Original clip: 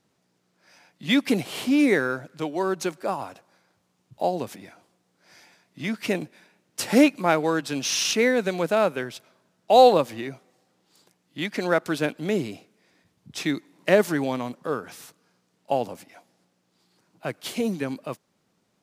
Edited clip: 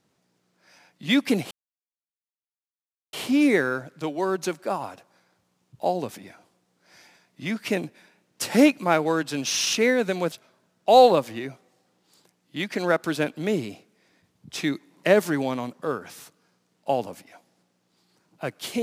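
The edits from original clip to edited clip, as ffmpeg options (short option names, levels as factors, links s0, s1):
-filter_complex "[0:a]asplit=3[s0][s1][s2];[s0]atrim=end=1.51,asetpts=PTS-STARTPTS,afade=t=out:st=1.506:d=0.004:c=hsin,apad=pad_dur=1.62[s3];[s1]atrim=start=1.51:end=8.702,asetpts=PTS-STARTPTS,afade=t=in:d=0.004:c=hsin[s4];[s2]atrim=start=9.138[s5];[s3][s4]concat=n=2:v=0:a=1[s6];[s6][s5]acrossfade=d=0.004:c1=hsin:c2=hsin"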